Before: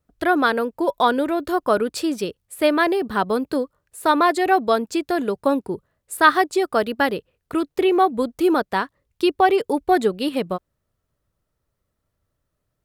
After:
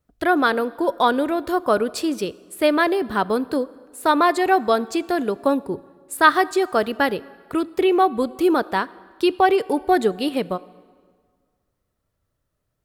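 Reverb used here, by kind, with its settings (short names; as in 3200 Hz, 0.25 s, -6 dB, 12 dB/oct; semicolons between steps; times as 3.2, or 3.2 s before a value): plate-style reverb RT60 1.8 s, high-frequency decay 0.75×, DRR 19 dB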